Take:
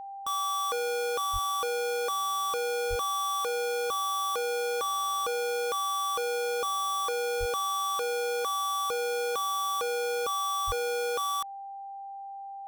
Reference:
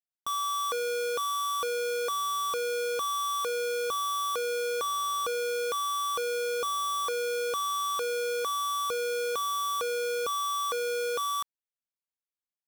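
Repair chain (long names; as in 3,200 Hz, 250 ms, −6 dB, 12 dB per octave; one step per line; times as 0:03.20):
notch filter 790 Hz, Q 30
high-pass at the plosives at 0:01.32/0:02.89/0:07.39/0:10.66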